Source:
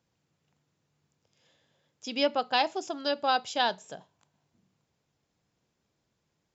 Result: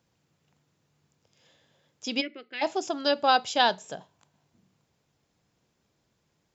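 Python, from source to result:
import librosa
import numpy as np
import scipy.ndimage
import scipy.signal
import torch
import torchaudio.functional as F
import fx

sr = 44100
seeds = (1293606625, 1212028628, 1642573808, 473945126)

y = fx.double_bandpass(x, sr, hz=860.0, octaves=2.6, at=(2.2, 2.61), fade=0.02)
y = y * librosa.db_to_amplitude(4.5)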